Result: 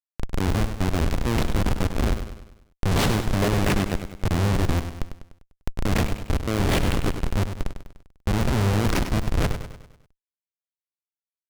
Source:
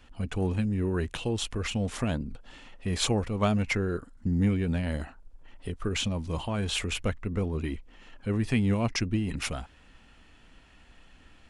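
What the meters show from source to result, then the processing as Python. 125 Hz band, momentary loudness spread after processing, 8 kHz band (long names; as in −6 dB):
+5.5 dB, 13 LU, +2.5 dB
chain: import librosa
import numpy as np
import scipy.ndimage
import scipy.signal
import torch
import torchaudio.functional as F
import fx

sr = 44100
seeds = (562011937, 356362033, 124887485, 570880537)

p1 = fx.spec_swells(x, sr, rise_s=0.68)
p2 = fx.schmitt(p1, sr, flips_db=-22.0)
p3 = p2 + fx.echo_feedback(p2, sr, ms=99, feedback_pct=49, wet_db=-9.0, dry=0)
p4 = fx.doppler_dist(p3, sr, depth_ms=0.73)
y = F.gain(torch.from_numpy(p4), 8.5).numpy()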